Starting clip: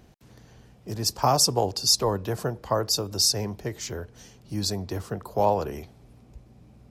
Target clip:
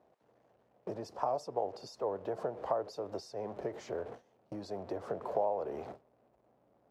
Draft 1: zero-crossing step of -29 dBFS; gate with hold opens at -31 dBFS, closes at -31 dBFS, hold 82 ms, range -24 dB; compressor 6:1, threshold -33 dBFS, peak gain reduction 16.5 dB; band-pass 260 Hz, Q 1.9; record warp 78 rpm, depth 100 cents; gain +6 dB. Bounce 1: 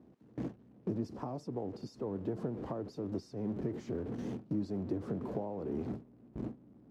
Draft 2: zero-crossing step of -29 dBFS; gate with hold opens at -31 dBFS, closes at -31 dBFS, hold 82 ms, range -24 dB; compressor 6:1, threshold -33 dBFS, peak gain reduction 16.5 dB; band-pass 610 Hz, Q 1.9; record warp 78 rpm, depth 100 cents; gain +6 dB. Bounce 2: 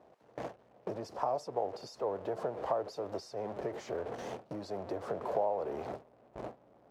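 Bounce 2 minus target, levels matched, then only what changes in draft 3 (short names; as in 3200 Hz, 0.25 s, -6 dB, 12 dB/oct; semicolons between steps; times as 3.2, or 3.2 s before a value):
zero-crossing step: distortion +7 dB
change: zero-crossing step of -37 dBFS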